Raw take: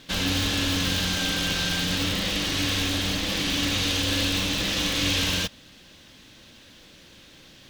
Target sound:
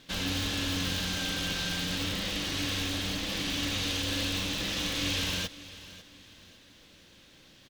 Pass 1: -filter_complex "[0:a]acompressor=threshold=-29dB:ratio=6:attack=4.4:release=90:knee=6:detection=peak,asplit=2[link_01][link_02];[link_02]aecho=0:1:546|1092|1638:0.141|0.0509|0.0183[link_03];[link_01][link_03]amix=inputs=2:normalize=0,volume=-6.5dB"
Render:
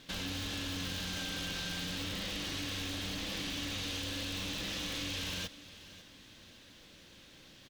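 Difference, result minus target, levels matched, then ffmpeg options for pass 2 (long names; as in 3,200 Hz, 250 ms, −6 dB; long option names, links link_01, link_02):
downward compressor: peak gain reduction +9 dB
-filter_complex "[0:a]asplit=2[link_01][link_02];[link_02]aecho=0:1:546|1092|1638:0.141|0.0509|0.0183[link_03];[link_01][link_03]amix=inputs=2:normalize=0,volume=-6.5dB"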